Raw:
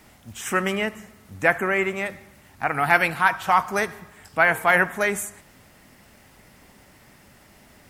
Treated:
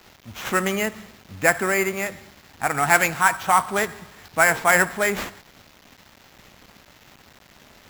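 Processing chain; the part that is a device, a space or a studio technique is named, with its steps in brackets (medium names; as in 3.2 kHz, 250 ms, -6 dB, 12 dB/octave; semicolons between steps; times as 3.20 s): early 8-bit sampler (sample-rate reducer 9.3 kHz, jitter 0%; bit crusher 8-bit); trim +1 dB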